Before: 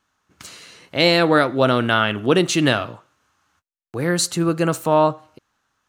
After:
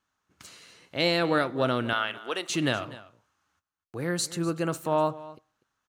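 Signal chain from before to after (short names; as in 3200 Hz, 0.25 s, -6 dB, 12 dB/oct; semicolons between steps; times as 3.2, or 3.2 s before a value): 1.93–2.5 HPF 670 Hz 12 dB/oct; on a send: echo 0.246 s -18 dB; on the sum: gain -9 dB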